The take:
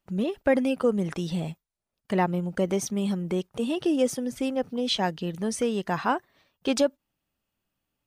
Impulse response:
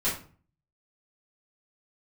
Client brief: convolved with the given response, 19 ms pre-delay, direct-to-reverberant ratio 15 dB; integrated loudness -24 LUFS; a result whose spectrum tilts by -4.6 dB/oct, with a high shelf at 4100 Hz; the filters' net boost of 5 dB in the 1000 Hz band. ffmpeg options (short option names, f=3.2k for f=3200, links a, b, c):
-filter_complex "[0:a]equalizer=f=1k:t=o:g=6,highshelf=f=4.1k:g=5.5,asplit=2[a][b];[1:a]atrim=start_sample=2205,adelay=19[c];[b][c]afir=irnorm=-1:irlink=0,volume=-24dB[d];[a][d]amix=inputs=2:normalize=0,volume=1.5dB"